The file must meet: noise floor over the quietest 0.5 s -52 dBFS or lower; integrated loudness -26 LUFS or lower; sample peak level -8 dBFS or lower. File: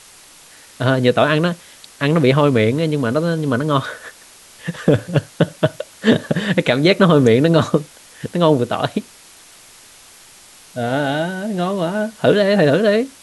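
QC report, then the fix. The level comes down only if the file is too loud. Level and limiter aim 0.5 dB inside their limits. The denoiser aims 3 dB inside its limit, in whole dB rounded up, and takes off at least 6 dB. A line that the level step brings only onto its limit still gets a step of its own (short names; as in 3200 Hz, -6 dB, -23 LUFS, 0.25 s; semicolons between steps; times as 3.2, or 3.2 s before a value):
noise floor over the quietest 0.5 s -44 dBFS: fail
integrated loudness -17.0 LUFS: fail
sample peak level -1.5 dBFS: fail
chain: gain -9.5 dB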